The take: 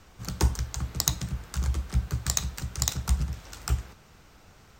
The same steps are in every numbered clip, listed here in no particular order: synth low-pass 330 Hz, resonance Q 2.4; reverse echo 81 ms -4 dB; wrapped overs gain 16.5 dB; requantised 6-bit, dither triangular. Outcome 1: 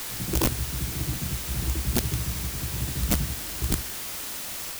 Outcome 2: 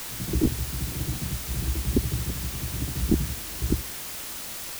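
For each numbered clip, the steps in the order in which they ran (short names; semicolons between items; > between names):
synth low-pass > requantised > reverse echo > wrapped overs; reverse echo > wrapped overs > synth low-pass > requantised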